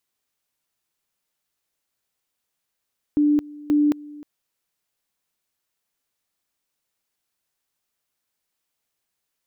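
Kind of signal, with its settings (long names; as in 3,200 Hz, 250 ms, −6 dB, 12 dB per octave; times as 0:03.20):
tone at two levels in turn 295 Hz −14.5 dBFS, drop 21.5 dB, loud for 0.22 s, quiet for 0.31 s, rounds 2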